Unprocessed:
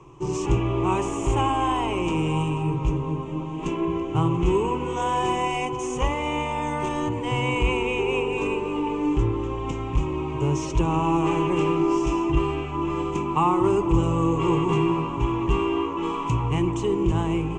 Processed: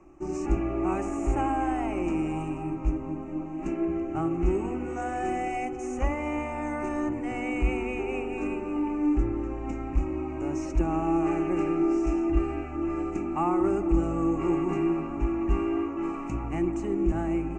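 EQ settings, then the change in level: treble shelf 3.8 kHz -9 dB; static phaser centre 670 Hz, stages 8; 0.0 dB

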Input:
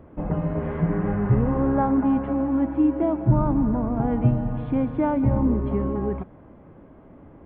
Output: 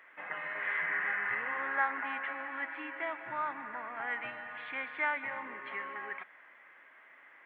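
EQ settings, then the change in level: resonant high-pass 1.9 kHz, resonance Q 4.8; +3.0 dB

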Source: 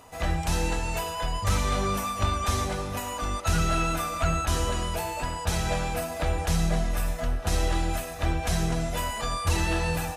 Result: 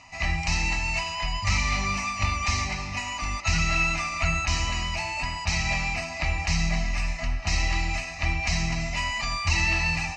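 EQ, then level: distance through air 120 m; high-order bell 4.2 kHz +13 dB 3 oct; static phaser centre 2.3 kHz, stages 8; 0.0 dB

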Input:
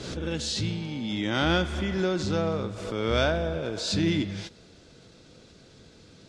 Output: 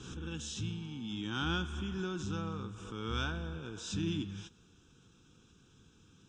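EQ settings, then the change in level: static phaser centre 3 kHz, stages 8; -7.5 dB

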